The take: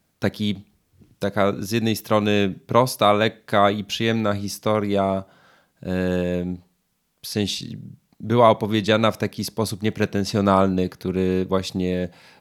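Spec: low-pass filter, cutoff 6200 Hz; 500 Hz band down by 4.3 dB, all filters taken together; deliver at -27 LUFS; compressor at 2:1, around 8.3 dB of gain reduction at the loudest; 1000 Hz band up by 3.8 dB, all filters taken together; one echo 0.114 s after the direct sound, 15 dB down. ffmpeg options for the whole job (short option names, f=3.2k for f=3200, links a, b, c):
-af "lowpass=6.2k,equalizer=f=500:t=o:g=-8,equalizer=f=1k:t=o:g=7,acompressor=threshold=-24dB:ratio=2,aecho=1:1:114:0.178,volume=0.5dB"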